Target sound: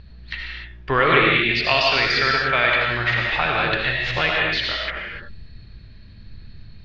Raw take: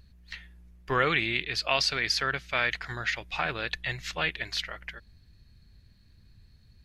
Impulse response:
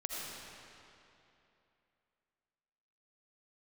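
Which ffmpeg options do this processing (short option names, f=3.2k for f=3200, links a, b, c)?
-filter_complex "[0:a]lowpass=f=4.1k:w=0.5412,lowpass=f=4.1k:w=1.3066,asplit=2[a][b];[b]acompressor=threshold=-39dB:ratio=6,volume=1.5dB[c];[a][c]amix=inputs=2:normalize=0[d];[1:a]atrim=start_sample=2205,afade=t=out:st=0.35:d=0.01,atrim=end_sample=15876[e];[d][e]afir=irnorm=-1:irlink=0,volume=7.5dB"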